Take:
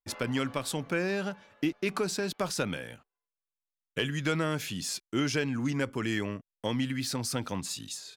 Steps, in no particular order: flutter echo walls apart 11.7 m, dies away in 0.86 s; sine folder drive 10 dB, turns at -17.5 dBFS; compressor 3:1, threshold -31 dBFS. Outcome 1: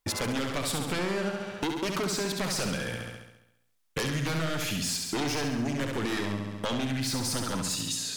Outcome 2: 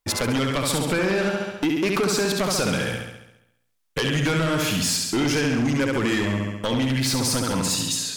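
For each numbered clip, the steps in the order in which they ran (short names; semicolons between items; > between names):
sine folder > flutter echo > compressor; flutter echo > compressor > sine folder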